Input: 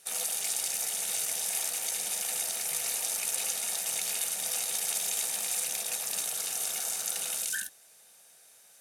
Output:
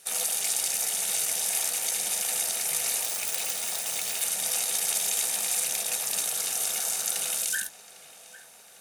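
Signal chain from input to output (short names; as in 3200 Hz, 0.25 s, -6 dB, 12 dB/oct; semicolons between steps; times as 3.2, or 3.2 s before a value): 3.03–4.22 self-modulated delay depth 0.052 ms; darkening echo 0.802 s, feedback 74%, low-pass 4400 Hz, level -17.5 dB; gain +4 dB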